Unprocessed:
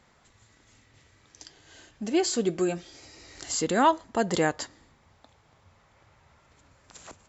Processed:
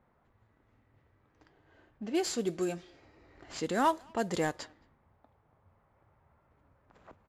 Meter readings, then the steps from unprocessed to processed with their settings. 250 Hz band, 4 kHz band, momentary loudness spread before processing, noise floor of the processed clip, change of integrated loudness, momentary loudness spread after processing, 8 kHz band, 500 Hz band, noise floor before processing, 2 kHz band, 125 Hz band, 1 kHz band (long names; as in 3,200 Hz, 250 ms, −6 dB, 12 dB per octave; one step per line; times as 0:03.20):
−6.0 dB, −7.5 dB, 16 LU, −71 dBFS, −6.5 dB, 16 LU, can't be measured, −6.0 dB, −62 dBFS, −6.5 dB, −6.0 dB, −6.0 dB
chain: variable-slope delta modulation 64 kbit/s
low-pass that shuts in the quiet parts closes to 1,200 Hz, open at −21.5 dBFS
far-end echo of a speakerphone 220 ms, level −27 dB
level −6 dB